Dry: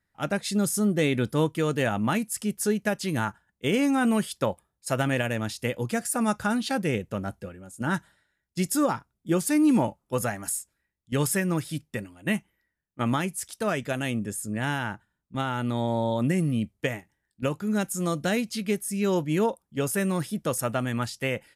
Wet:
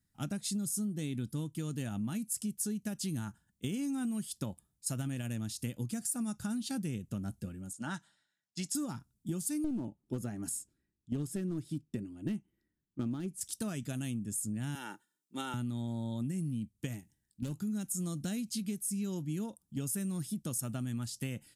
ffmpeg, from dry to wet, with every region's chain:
ffmpeg -i in.wav -filter_complex "[0:a]asettb=1/sr,asplit=3[link_01][link_02][link_03];[link_01]atrim=end=7.734[link_04];[link_02]atrim=start=7.73:end=8.75,asetpts=PTS-STARTPTS,afade=type=in:duration=0.004:curve=qsin,afade=type=out:start_time=1.016:duration=0.004:curve=qsin,highpass=200,lowpass=5700,lowshelf=frequency=550:width_type=q:width=1.5:gain=-7[link_05];[link_03]atrim=start=8.746[link_06];[link_04][link_05]acrossfade=duration=0.004:curve1=hsin:curve2=qsin[link_07];[link_07][link_06]acrossfade=duration=0.004:curve1=qsin:curve2=hsin,asettb=1/sr,asplit=3[link_08][link_09][link_10];[link_08]atrim=end=9.644[link_11];[link_09]atrim=start=9.64:end=13.41,asetpts=PTS-STARTPTS,afade=type=in:duration=0.004:curve=qsin,afade=type=out:start_time=3.766:duration=0.004:curve=qsin,lowpass=frequency=2600:poles=1,equalizer=frequency=360:width_type=o:width=1:gain=10.5,aeval=exprs='clip(val(0),-1,0.112)':channel_layout=same[link_12];[link_10]atrim=start=13.406[link_13];[link_11][link_12]acrossfade=duration=0.004:curve1=hsin:curve2=qsin[link_14];[link_14][link_13]acrossfade=duration=0.004:curve1=qsin:curve2=hsin,asettb=1/sr,asplit=3[link_15][link_16][link_17];[link_15]atrim=end=14.754[link_18];[link_16]atrim=start=14.75:end=15.54,asetpts=PTS-STARTPTS,afade=type=in:duration=0.004:curve=qsin,afade=type=out:start_time=0.786:duration=0.004:curve=qsin,highpass=frequency=260:width=0.5412,highpass=frequency=260:width=1.3066,aecho=1:1:2.2:0.55,atrim=end_sample=34839[link_19];[link_17]atrim=start=15.536[link_20];[link_18][link_19]acrossfade=duration=0.004:curve1=hsin:curve2=qsin[link_21];[link_21][link_20]acrossfade=duration=0.004:curve1=qsin:curve2=hsin,asettb=1/sr,asplit=3[link_22][link_23][link_24];[link_22]atrim=end=16.934[link_25];[link_23]atrim=start=16.93:end=17.56,asetpts=PTS-STARTPTS,afade=type=in:duration=0.004:curve=qsin,afade=type=out:start_time=0.626:duration=0.004:curve=qsin,equalizer=frequency=1200:width=2.6:gain=-7,volume=26dB,asoftclip=hard,volume=-26dB[link_26];[link_24]atrim=start=17.556[link_27];[link_25][link_26]acrossfade=duration=0.004:curve1=hsin:curve2=qsin[link_28];[link_28][link_27]acrossfade=duration=0.004:curve1=qsin:curve2=hsin,equalizer=frequency=125:width_type=o:width=1:gain=4,equalizer=frequency=250:width_type=o:width=1:gain=5,equalizer=frequency=500:width_type=o:width=1:gain=-11,equalizer=frequency=1000:width_type=o:width=1:gain=-7,equalizer=frequency=2000:width_type=o:width=1:gain=-9,equalizer=frequency=8000:width_type=o:width=1:gain=5,acompressor=threshold=-33dB:ratio=6,highshelf=frequency=11000:gain=5,volume=-1dB" out.wav

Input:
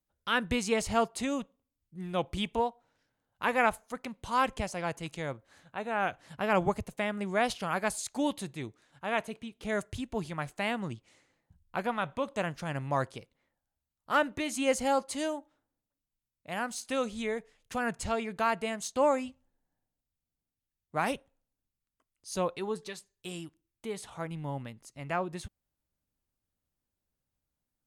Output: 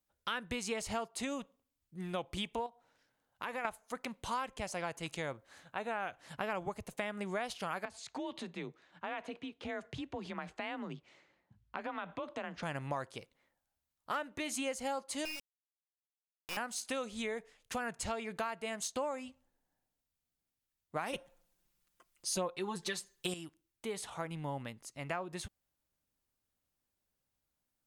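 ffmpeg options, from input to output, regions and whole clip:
ffmpeg -i in.wav -filter_complex "[0:a]asettb=1/sr,asplit=3[link_01][link_02][link_03];[link_01]atrim=end=2.664[link_04];[link_02]atrim=start=2.66:end=3.65,asetpts=PTS-STARTPTS,afade=type=in:duration=0.004:curve=qsin,afade=type=out:start_time=0.986:duration=0.004:curve=qsin,bandreject=frequency=50:width_type=h:width=6,bandreject=frequency=100:width_type=h:width=6,bandreject=frequency=150:width_type=h:width=6,acompressor=threshold=-39dB:ratio=3:attack=3.2:release=140:knee=1:detection=peak[link_05];[link_03]atrim=start=3.646[link_06];[link_04][link_05]acrossfade=duration=0.004:curve1=hsin:curve2=qsin[link_07];[link_07][link_06]acrossfade=duration=0.004:curve1=qsin:curve2=hsin,asettb=1/sr,asplit=3[link_08][link_09][link_10];[link_08]atrim=end=7.854[link_11];[link_09]atrim=start=7.85:end=12.63,asetpts=PTS-STARTPTS,afade=type=in:duration=0.004:curve=qsin,afade=type=out:start_time=4.776:duration=0.004:curve=qsin,acompressor=threshold=-36dB:ratio=5:attack=3.2:release=140:knee=1:detection=peak,afreqshift=34,lowpass=3900[link_12];[link_10]atrim=start=12.626[link_13];[link_11][link_12]acrossfade=duration=0.004:curve1=hsin:curve2=qsin[link_14];[link_14][link_13]acrossfade=duration=0.004:curve1=qsin:curve2=hsin,asettb=1/sr,asplit=3[link_15][link_16][link_17];[link_15]atrim=end=15.254[link_18];[link_16]atrim=start=15.25:end=16.57,asetpts=PTS-STARTPTS,afade=type=in:duration=0.004:curve=qsin,afade=type=out:start_time=1.316:duration=0.004:curve=qsin,lowpass=frequency=2600:width_type=q:width=0.5098,lowpass=frequency=2600:width_type=q:width=0.6013,lowpass=frequency=2600:width_type=q:width=0.9,lowpass=frequency=2600:width_type=q:width=2.563,afreqshift=-3100,equalizer=frequency=1500:width=1.2:gain=-4,acrusher=bits=4:dc=4:mix=0:aa=0.000001[link_19];[link_17]atrim=start=16.566[link_20];[link_18][link_19]acrossfade=duration=0.004:curve1=hsin:curve2=qsin[link_21];[link_21][link_20]acrossfade=duration=0.004:curve1=qsin:curve2=hsin,asettb=1/sr,asplit=3[link_22][link_23][link_24];[link_22]atrim=end=21.134[link_25];[link_23]atrim=start=21.13:end=23.34,asetpts=PTS-STARTPTS,afade=type=in:duration=0.004:curve=qsin,afade=type=out:start_time=2.206:duration=0.004:curve=qsin,aecho=1:1:5.7:0.97,atrim=end_sample=97461,acontrast=72[link_26];[link_24]atrim=start=23.336[link_27];[link_25][link_26]acrossfade=duration=0.004:curve1=hsin:curve2=qsin[link_28];[link_28][link_27]acrossfade=duration=0.004:curve1=qsin:curve2=hsin,lowshelf=frequency=290:gain=-7,acompressor=threshold=-37dB:ratio=6,volume=2.5dB" out.wav

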